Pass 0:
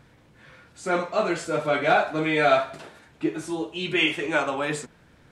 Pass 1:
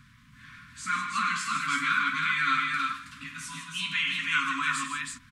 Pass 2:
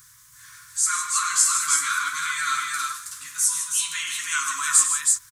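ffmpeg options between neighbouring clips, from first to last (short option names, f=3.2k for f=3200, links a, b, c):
-filter_complex "[0:a]afftfilt=real='re*(1-between(b*sr/4096,280,980))':imag='im*(1-between(b*sr/4096,280,980))':win_size=4096:overlap=0.75,acrossover=split=290|1300[a][b][c];[a]acompressor=threshold=-57dB:ratio=4[d];[b]acompressor=threshold=-28dB:ratio=4[e];[c]acompressor=threshold=-30dB:ratio=4[f];[d][e][f]amix=inputs=3:normalize=0,asplit=2[g][h];[h]aecho=0:1:100|155|323:0.299|0.355|0.708[i];[g][i]amix=inputs=2:normalize=0,volume=1.5dB"
-af "firequalizer=gain_entry='entry(130,0);entry(210,-23);entry(380,10);entry(1700,4);entry(2500,-4);entry(6300,15)':delay=0.05:min_phase=1,crystalizer=i=4.5:c=0,volume=-7.5dB"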